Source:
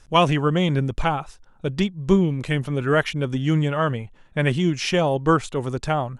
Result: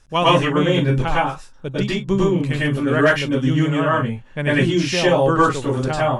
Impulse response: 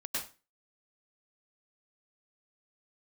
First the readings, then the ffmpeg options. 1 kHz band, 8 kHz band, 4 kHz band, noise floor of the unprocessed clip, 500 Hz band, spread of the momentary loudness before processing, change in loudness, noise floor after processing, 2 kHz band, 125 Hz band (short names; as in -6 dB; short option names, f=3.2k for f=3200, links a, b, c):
+4.0 dB, +4.0 dB, +4.5 dB, -52 dBFS, +4.5 dB, 8 LU, +4.0 dB, -43 dBFS, +6.0 dB, +2.0 dB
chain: -filter_complex "[1:a]atrim=start_sample=2205,afade=t=out:st=0.21:d=0.01,atrim=end_sample=9702[a];[0:a][a]afir=irnorm=-1:irlink=0,volume=2dB"